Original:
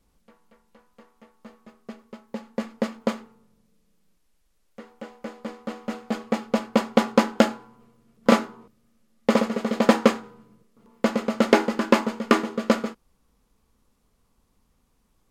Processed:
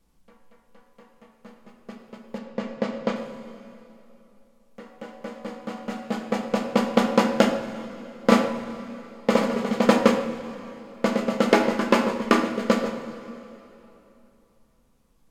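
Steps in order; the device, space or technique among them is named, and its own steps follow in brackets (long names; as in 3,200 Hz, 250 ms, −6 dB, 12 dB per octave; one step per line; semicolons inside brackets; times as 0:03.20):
saturated reverb return (on a send at −9.5 dB: convolution reverb RT60 3.0 s, pre-delay 76 ms + soft clipping −22.5 dBFS, distortion −9 dB)
0:02.38–0:03.16: on the sum: low-pass filter 5,500 Hz 12 dB per octave
rectangular room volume 290 cubic metres, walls mixed, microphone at 0.69 metres
level −1 dB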